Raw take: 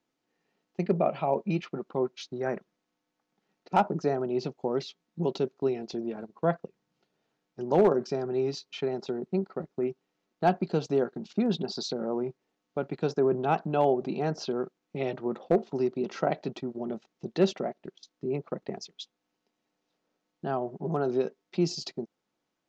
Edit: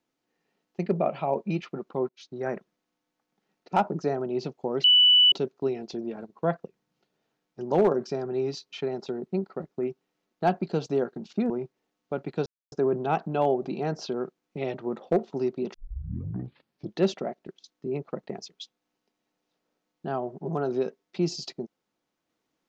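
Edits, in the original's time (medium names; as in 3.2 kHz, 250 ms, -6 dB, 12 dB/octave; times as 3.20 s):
2.09–2.42 s: fade in, from -22.5 dB
4.84–5.32 s: bleep 2.97 kHz -14 dBFS
11.50–12.15 s: delete
13.11 s: insert silence 0.26 s
16.13 s: tape start 1.25 s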